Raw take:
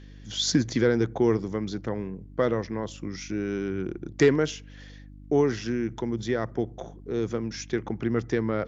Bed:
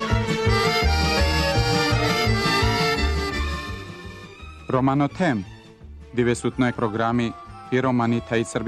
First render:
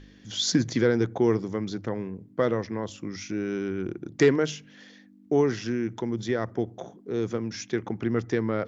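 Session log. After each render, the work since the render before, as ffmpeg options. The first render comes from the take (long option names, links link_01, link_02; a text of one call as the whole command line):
ffmpeg -i in.wav -af "bandreject=frequency=50:width_type=h:width=4,bandreject=frequency=100:width_type=h:width=4,bandreject=frequency=150:width_type=h:width=4" out.wav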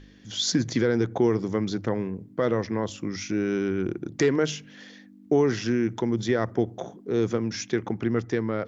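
ffmpeg -i in.wav -af "dynaudnorm=framelen=130:gausssize=13:maxgain=4dB,alimiter=limit=-12.5dB:level=0:latency=1:release=141" out.wav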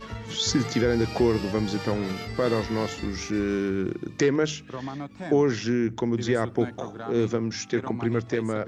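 ffmpeg -i in.wav -i bed.wav -filter_complex "[1:a]volume=-15dB[link_01];[0:a][link_01]amix=inputs=2:normalize=0" out.wav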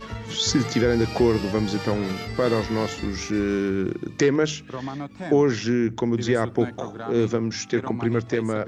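ffmpeg -i in.wav -af "volume=2.5dB" out.wav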